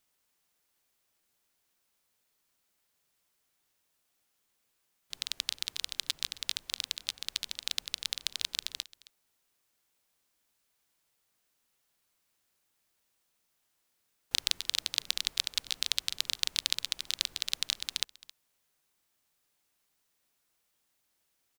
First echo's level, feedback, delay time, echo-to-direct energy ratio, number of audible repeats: −20.5 dB, repeats not evenly spaced, 268 ms, −20.5 dB, 1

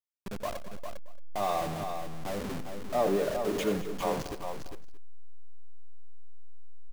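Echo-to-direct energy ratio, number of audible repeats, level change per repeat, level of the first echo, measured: −5.5 dB, 5, repeats not evenly spaced, −12.0 dB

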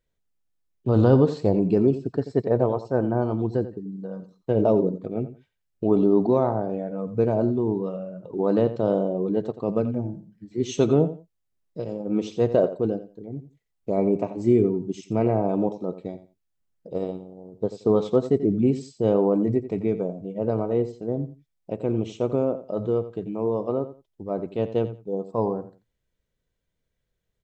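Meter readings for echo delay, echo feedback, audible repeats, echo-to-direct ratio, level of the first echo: 87 ms, 20%, 2, −13.5 dB, −13.5 dB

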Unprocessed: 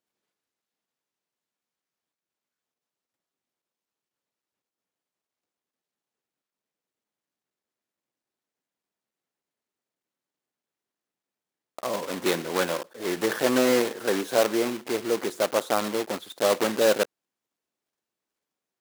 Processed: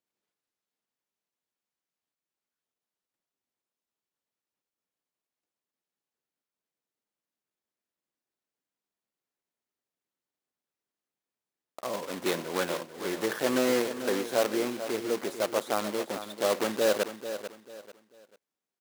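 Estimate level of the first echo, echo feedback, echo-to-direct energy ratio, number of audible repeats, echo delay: −11.0 dB, 30%, −10.5 dB, 3, 442 ms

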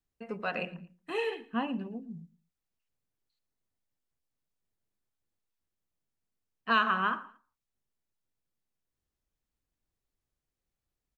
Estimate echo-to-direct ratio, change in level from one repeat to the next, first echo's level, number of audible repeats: −20.5 dB, −10.0 dB, −21.0 dB, 2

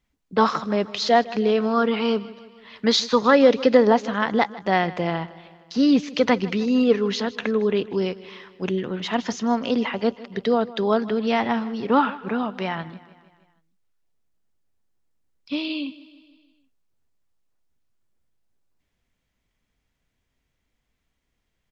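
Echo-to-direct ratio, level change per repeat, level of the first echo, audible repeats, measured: −17.0 dB, −4.5 dB, −19.0 dB, 4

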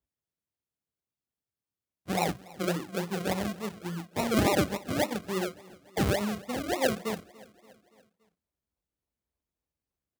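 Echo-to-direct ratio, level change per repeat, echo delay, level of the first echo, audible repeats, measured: −20.5 dB, −5.0 dB, 286 ms, −22.0 dB, 3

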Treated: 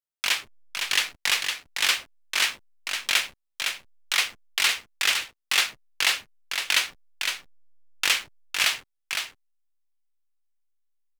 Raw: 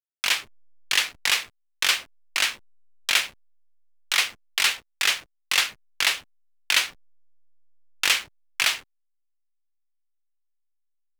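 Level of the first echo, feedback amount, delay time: −5.5 dB, repeats not evenly spaced, 510 ms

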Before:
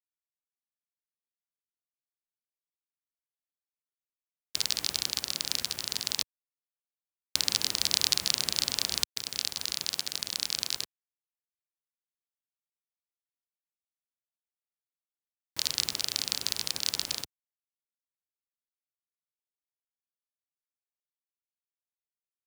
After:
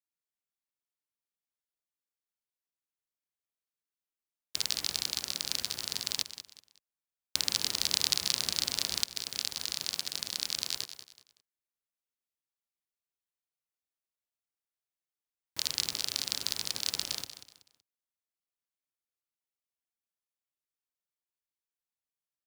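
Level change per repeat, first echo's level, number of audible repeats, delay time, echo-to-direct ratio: −10.5 dB, −12.0 dB, 3, 188 ms, −11.5 dB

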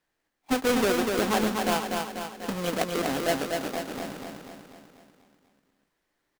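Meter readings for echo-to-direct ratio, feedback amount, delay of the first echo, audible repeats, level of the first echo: −2.5 dB, 55%, 245 ms, 6, −4.0 dB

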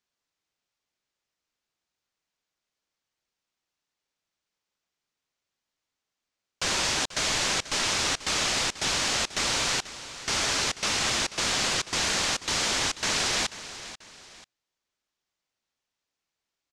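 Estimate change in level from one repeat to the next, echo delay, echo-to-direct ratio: −8.5 dB, 488 ms, −14.0 dB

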